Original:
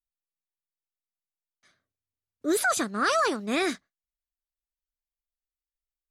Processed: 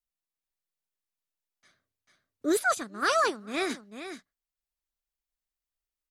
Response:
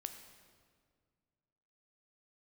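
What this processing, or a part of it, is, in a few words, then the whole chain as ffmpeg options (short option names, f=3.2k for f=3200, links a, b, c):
ducked delay: -filter_complex "[0:a]asplit=3[a][b][c];[b]adelay=443,volume=-3dB[d];[c]apad=whole_len=288880[e];[d][e]sidechaincompress=threshold=-37dB:ratio=12:attack=16:release=1100[f];[a][f]amix=inputs=2:normalize=0,asplit=3[g][h][i];[g]afade=t=out:st=2.49:d=0.02[j];[h]agate=range=-10dB:threshold=-24dB:ratio=16:detection=peak,afade=t=in:st=2.49:d=0.02,afade=t=out:st=3.69:d=0.02[k];[i]afade=t=in:st=3.69:d=0.02[l];[j][k][l]amix=inputs=3:normalize=0"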